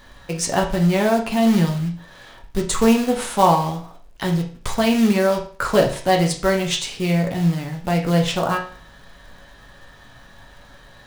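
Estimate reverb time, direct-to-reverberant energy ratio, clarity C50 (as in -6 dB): 0.45 s, 0.5 dB, 10.0 dB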